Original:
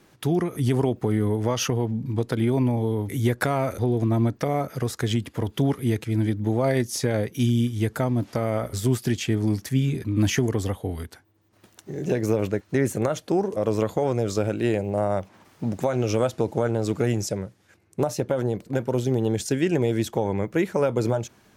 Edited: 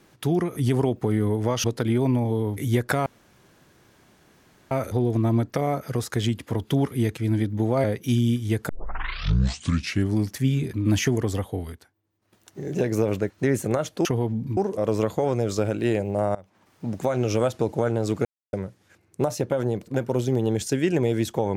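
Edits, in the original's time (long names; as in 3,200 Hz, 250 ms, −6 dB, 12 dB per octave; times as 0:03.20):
0:01.64–0:02.16: move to 0:13.36
0:03.58: splice in room tone 1.65 s
0:06.71–0:07.15: remove
0:08.00: tape start 1.47 s
0:10.86–0:11.91: duck −11 dB, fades 0.34 s linear
0:15.14–0:15.89: fade in, from −21 dB
0:17.04–0:17.32: silence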